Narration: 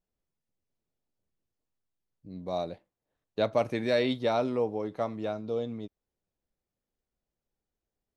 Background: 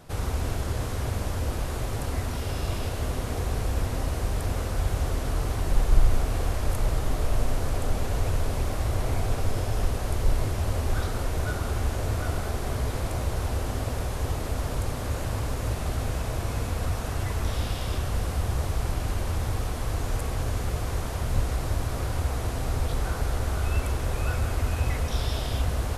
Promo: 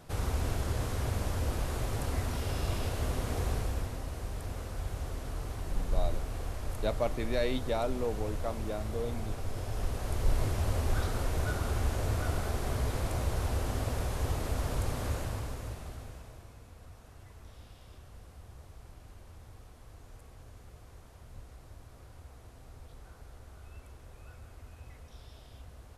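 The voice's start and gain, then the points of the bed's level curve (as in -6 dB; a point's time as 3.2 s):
3.45 s, -5.0 dB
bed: 3.5 s -3.5 dB
4.01 s -10.5 dB
9.43 s -10.5 dB
10.44 s -3.5 dB
15.08 s -3.5 dB
16.58 s -23.5 dB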